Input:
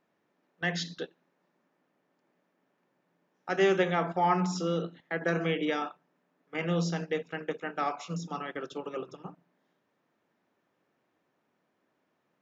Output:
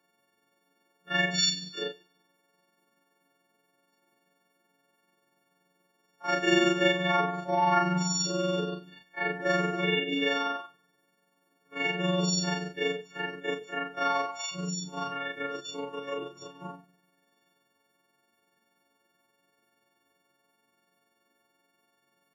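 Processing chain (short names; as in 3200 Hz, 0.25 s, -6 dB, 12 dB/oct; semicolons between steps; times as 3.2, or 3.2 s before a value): frequency quantiser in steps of 4 st; granular stretch 1.8×, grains 96 ms; two-slope reverb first 0.38 s, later 1.8 s, from -25 dB, DRR 16.5 dB; gain +1 dB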